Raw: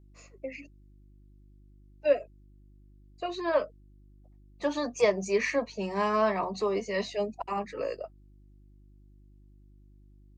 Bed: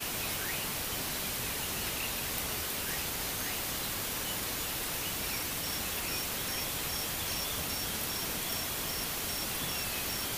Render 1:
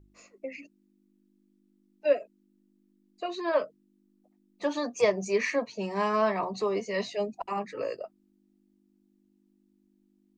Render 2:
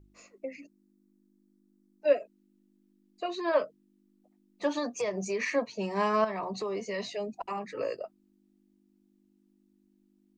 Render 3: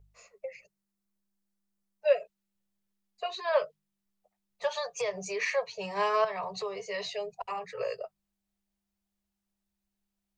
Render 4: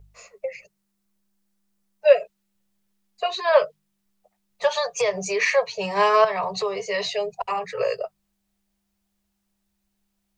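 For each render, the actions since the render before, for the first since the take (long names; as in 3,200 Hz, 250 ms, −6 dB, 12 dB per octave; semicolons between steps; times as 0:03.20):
hum removal 50 Hz, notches 3
0:00.45–0:02.08: parametric band 2,800 Hz −8.5 dB 0.88 octaves; 0:04.78–0:05.52: downward compressor, threshold −27 dBFS; 0:06.24–0:07.63: downward compressor 4 to 1, threshold −30 dBFS
dynamic equaliser 3,400 Hz, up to +5 dB, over −49 dBFS, Q 1; Chebyshev band-stop filter 180–410 Hz, order 4
level +9.5 dB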